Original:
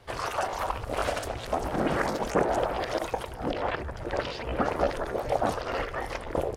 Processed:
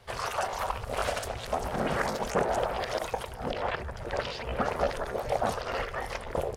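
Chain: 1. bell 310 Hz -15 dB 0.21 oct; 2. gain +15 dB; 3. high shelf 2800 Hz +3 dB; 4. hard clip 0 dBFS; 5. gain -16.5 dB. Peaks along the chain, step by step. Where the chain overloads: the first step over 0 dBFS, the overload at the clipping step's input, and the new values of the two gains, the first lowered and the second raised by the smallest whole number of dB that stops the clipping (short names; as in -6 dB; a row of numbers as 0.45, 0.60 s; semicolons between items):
-11.0, +4.0, +4.5, 0.0, -16.5 dBFS; step 2, 4.5 dB; step 2 +10 dB, step 5 -11.5 dB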